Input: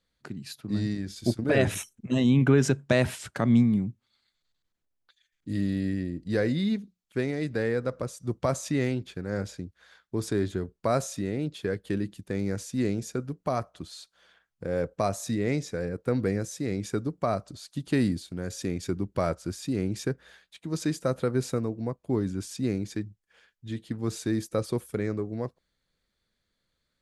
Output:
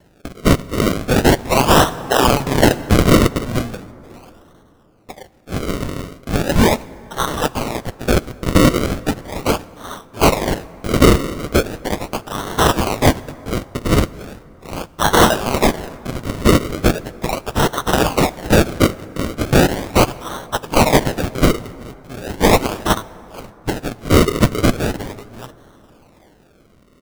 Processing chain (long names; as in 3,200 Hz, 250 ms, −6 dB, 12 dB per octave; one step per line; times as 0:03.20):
elliptic high-pass filter 2,900 Hz, stop band 40 dB
comb filter 7.4 ms, depth 73%
sample-and-hold swept by an LFO 36×, swing 100% 0.38 Hz
dense smooth reverb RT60 3.6 s, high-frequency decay 0.45×, DRR 19.5 dB
boost into a limiter +31.5 dB
level −1 dB